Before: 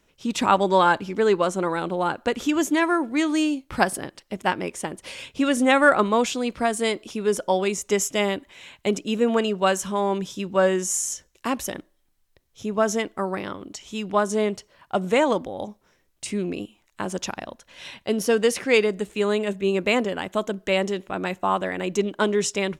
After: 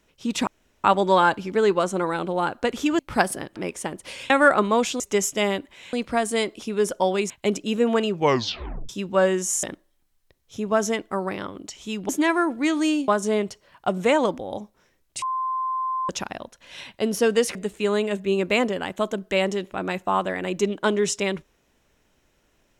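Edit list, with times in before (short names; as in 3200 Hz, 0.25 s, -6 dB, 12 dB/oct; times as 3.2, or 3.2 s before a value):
0.47 insert room tone 0.37 s
2.62–3.61 move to 14.15
4.18–4.55 cut
5.29–5.71 cut
7.78–8.71 move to 6.41
9.5 tape stop 0.80 s
11.04–11.69 cut
16.29–17.16 bleep 1040 Hz -23 dBFS
18.62–18.91 cut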